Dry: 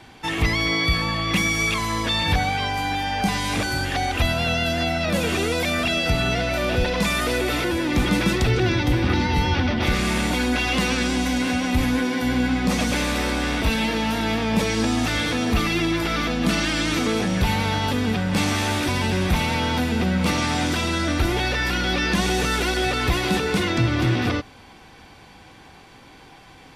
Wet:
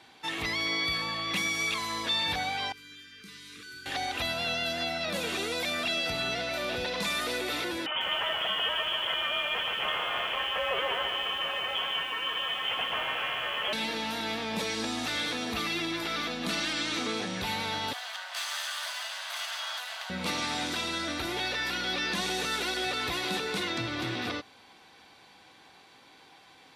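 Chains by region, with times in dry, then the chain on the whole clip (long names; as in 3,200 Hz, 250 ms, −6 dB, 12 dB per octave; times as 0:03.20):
0:02.72–0:03.86: Chebyshev band-stop filter 440–1,200 Hz, order 3 + tuned comb filter 150 Hz, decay 1.7 s, mix 80%
0:07.86–0:13.73: spectral tilt +3 dB per octave + voice inversion scrambler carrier 3,300 Hz + feedback echo at a low word length 146 ms, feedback 35%, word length 7 bits, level −6.5 dB
0:16.73–0:17.42: low-pass filter 9,100 Hz + double-tracking delay 28 ms −12 dB
0:17.93–0:20.10: lower of the sound and its delayed copy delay 0.64 ms + Butterworth high-pass 610 Hz 72 dB per octave
whole clip: high-pass filter 430 Hz 6 dB per octave; parametric band 3,900 Hz +6.5 dB 0.32 octaves; level −7.5 dB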